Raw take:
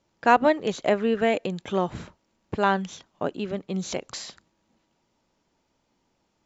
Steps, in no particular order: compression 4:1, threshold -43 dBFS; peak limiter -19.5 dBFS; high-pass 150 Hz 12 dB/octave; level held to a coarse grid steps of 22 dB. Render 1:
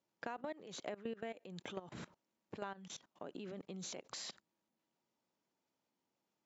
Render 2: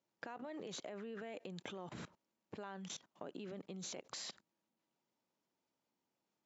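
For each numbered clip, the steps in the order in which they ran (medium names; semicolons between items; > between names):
high-pass > level held to a coarse grid > peak limiter > compression; peak limiter > level held to a coarse grid > high-pass > compression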